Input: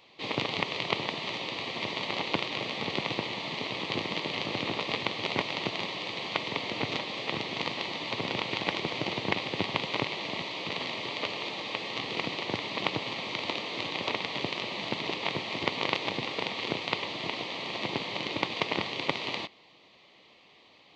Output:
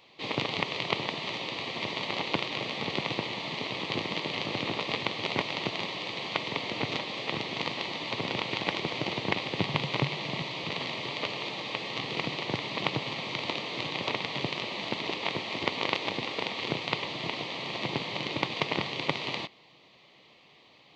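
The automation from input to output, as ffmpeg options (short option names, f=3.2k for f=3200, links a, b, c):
-af "asetnsamples=n=441:p=0,asendcmd='9.58 equalizer g 13.5;10.64 equalizer g 7;14.64 equalizer g -2;16.62 equalizer g 6.5',equalizer=f=140:t=o:w=0.48:g=2"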